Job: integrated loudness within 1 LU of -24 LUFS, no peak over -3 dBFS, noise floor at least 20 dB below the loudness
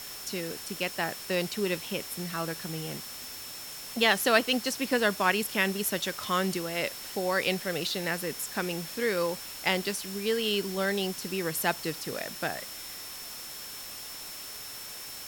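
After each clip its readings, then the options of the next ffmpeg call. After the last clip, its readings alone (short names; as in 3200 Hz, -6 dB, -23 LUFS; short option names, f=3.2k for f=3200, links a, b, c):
steady tone 5400 Hz; tone level -45 dBFS; noise floor -42 dBFS; noise floor target -50 dBFS; loudness -30.0 LUFS; peak -7.5 dBFS; loudness target -24.0 LUFS
-> -af "bandreject=f=5.4k:w=30"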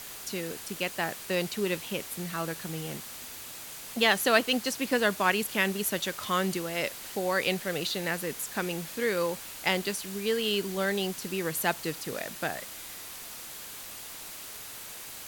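steady tone none; noise floor -43 dBFS; noise floor target -51 dBFS
-> -af "afftdn=nr=8:nf=-43"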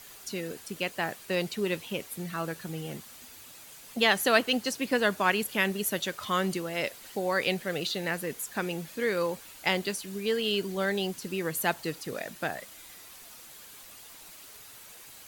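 noise floor -49 dBFS; noise floor target -50 dBFS
-> -af "afftdn=nr=6:nf=-49"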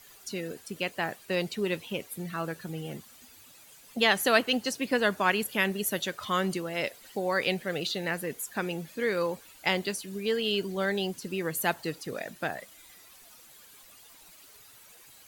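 noise floor -54 dBFS; loudness -30.0 LUFS; peak -7.5 dBFS; loudness target -24.0 LUFS
-> -af "volume=6dB,alimiter=limit=-3dB:level=0:latency=1"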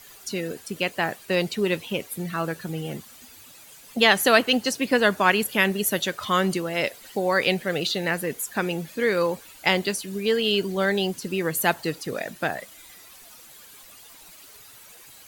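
loudness -24.0 LUFS; peak -3.0 dBFS; noise floor -48 dBFS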